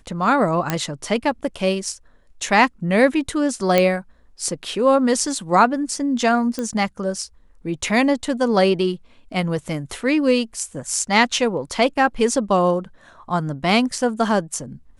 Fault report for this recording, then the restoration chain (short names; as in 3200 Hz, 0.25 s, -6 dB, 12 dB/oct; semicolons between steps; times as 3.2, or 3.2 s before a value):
0.7 pop -5 dBFS
3.78 pop -3 dBFS
6.59 pop -12 dBFS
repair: de-click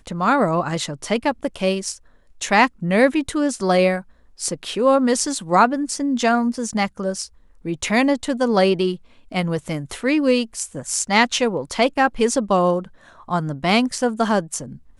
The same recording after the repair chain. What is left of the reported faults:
none